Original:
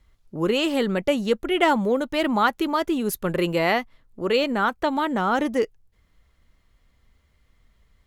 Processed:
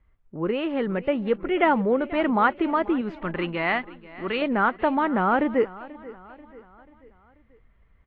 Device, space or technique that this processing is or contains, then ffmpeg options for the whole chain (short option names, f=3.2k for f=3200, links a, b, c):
action camera in a waterproof case: -filter_complex "[0:a]asettb=1/sr,asplit=3[a][b][c];[a]atrim=end=3.014[d];[b]atrim=start=3.01:end=4.42,asetpts=PTS-STARTPTS,afade=t=in:d=0.004:c=qsin,afade=t=out:st=1.406:d=0.004:c=qsin,equalizer=f=125:t=o:w=1:g=-8,equalizer=f=500:t=o:w=1:g=-10,equalizer=f=4k:t=o:w=1:g=5[e];[c]atrim=start=4.416[f];[d][e]acrossfade=d=0.004:c1=hsin:c2=qsin[g];[g][f]acrossfade=d=0.004:c1=qsin:c2=hsin,lowpass=f=2.4k:w=0.5412,lowpass=f=2.4k:w=1.3066,aecho=1:1:487|974|1461|1948:0.112|0.055|0.0269|0.0132,dynaudnorm=f=240:g=11:m=4.5dB,volume=-3.5dB" -ar 22050 -c:a aac -b:a 48k